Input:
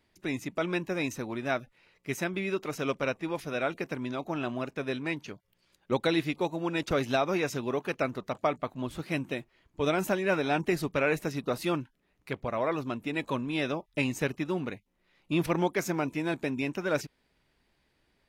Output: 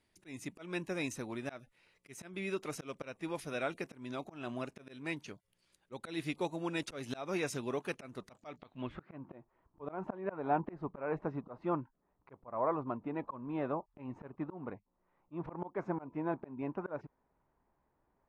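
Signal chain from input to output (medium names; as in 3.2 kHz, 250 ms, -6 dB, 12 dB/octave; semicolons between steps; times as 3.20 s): low-pass sweep 10 kHz -> 1 kHz, 8.30–9.19 s; slow attack 213 ms; trim -6 dB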